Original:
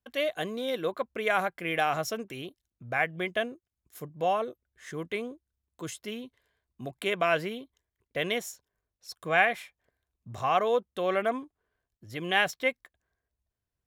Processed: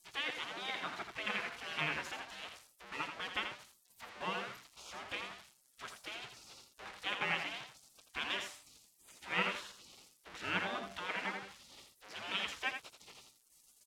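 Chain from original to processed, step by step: zero-crossing glitches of -26 dBFS; low-pass 2 kHz 12 dB/octave; de-hum 98.16 Hz, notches 8; spectral gate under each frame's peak -20 dB weak; delay 83 ms -7.5 dB; trim +5.5 dB

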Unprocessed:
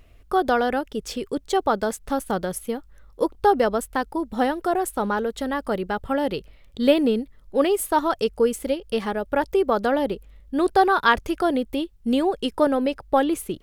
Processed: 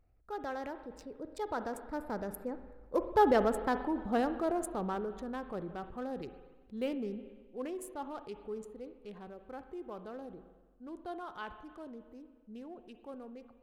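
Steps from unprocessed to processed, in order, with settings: local Wiener filter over 15 samples; Doppler pass-by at 3.49 s, 32 m/s, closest 26 m; spring tank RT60 1.6 s, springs 43/59 ms, chirp 70 ms, DRR 13.5 dB; transient shaper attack -2 dB, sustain +4 dB; trim -5.5 dB

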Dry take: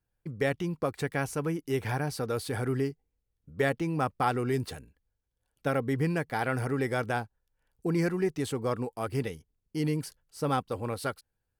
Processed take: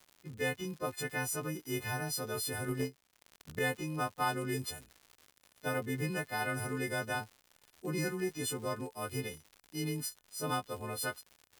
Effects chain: partials quantised in pitch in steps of 3 st; crackle 140 per s -37 dBFS; 2.67–3.59 s: transient shaper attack +12 dB, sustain -8 dB; trim -7 dB

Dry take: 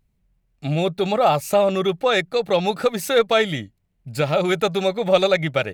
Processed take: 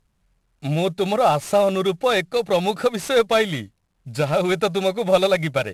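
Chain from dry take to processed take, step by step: CVSD coder 64 kbps

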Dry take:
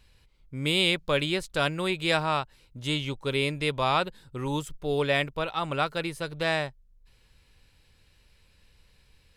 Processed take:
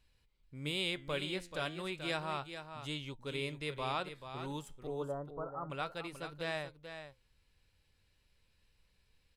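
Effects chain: 4.87–5.70 s: steep low-pass 1.4 kHz 72 dB/octave; flange 0.32 Hz, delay 3 ms, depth 9 ms, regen +85%; delay 434 ms -9.5 dB; trim -7.5 dB

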